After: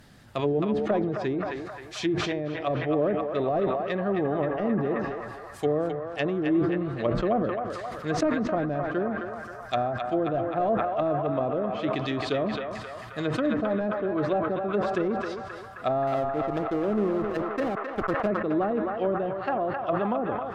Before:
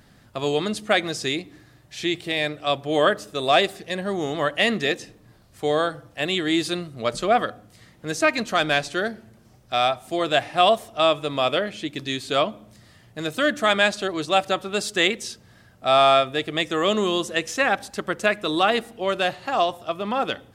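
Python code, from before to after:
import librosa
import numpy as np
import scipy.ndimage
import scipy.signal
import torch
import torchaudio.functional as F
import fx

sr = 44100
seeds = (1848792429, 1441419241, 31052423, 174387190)

y = fx.self_delay(x, sr, depth_ms=0.087)
y = fx.env_lowpass_down(y, sr, base_hz=430.0, full_db=-20.5)
y = fx.backlash(y, sr, play_db=-30.0, at=(16.07, 18.27))
y = fx.echo_banded(y, sr, ms=265, feedback_pct=84, hz=1300.0, wet_db=-3.5)
y = fx.sustainer(y, sr, db_per_s=33.0)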